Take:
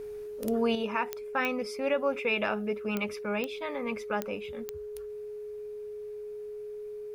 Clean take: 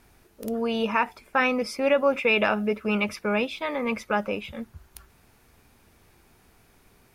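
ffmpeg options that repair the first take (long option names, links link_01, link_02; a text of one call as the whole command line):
ffmpeg -i in.wav -af "adeclick=threshold=4,bandreject=frequency=420:width=30,asetnsamples=nb_out_samples=441:pad=0,asendcmd='0.75 volume volume 7dB',volume=0dB" out.wav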